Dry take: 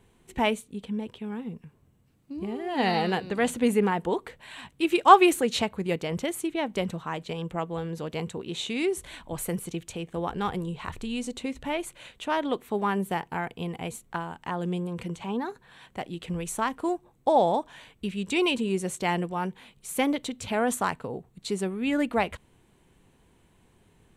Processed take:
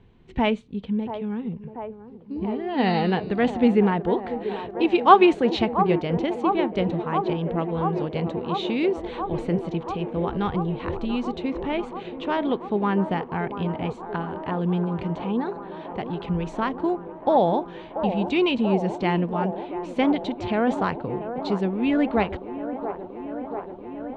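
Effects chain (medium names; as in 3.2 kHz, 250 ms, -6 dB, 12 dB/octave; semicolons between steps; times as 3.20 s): low-pass 4.5 kHz 24 dB/octave; bass shelf 340 Hz +8.5 dB; on a send: feedback echo behind a band-pass 685 ms, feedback 82%, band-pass 600 Hz, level -8.5 dB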